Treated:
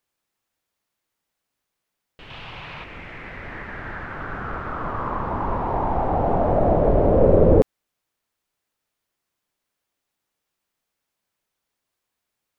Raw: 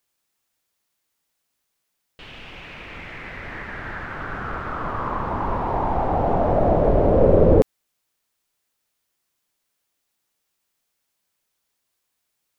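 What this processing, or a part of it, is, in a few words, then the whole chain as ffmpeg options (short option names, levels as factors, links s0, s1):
behind a face mask: -filter_complex "[0:a]asettb=1/sr,asplit=3[s0][s1][s2];[s0]atrim=end=2.304[s3];[s1]atrim=start=2.3:end=2.84,asetpts=PTS-STARTPTS,afade=t=in:d=0.004:c=qsin,afade=t=out:st=0.536:d=0.004:c=qsin,equalizer=f=125:t=o:w=1:g=8,equalizer=f=250:t=o:w=1:g=-4,equalizer=f=1000:t=o:w=1:g=8,equalizer=f=4000:t=o:w=1:g=8[s4];[s2]atrim=start=2.836[s5];[s3][s4]acrossfade=d=0.004:c1=hsin:c2=qsin[s6];[s6][s5]acrossfade=d=0.004:c1=qsin:c2=hsin,highshelf=f=3200:g=-7.5"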